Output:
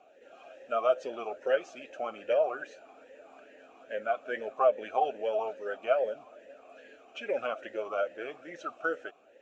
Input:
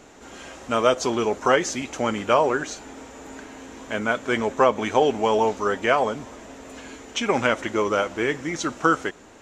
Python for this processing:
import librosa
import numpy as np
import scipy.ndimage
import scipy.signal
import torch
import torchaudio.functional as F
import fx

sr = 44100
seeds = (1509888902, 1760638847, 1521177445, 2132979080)

y = fx.spec_quant(x, sr, step_db=15)
y = fx.vowel_sweep(y, sr, vowels='a-e', hz=2.4)